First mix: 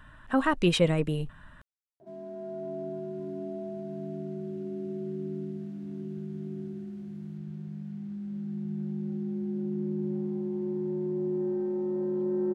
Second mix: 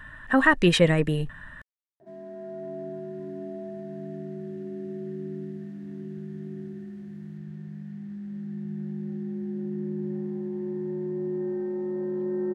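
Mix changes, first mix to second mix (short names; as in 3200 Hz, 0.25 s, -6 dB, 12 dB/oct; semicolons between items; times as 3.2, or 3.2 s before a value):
speech +4.0 dB; master: add bell 1800 Hz +13.5 dB 0.23 oct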